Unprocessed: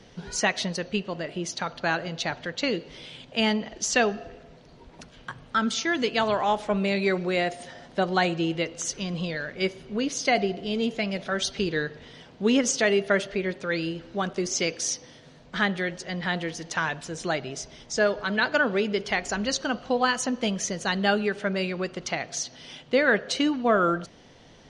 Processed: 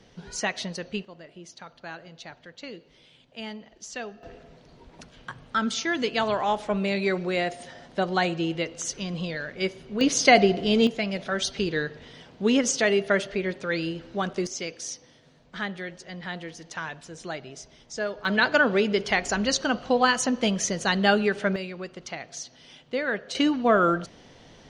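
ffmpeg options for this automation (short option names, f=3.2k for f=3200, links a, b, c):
-af "asetnsamples=n=441:p=0,asendcmd='1.05 volume volume -13.5dB;4.23 volume volume -1dB;10.01 volume volume 6.5dB;10.87 volume volume 0dB;14.47 volume volume -7dB;18.25 volume volume 2.5dB;21.56 volume volume -6.5dB;23.35 volume volume 1.5dB',volume=-4dB"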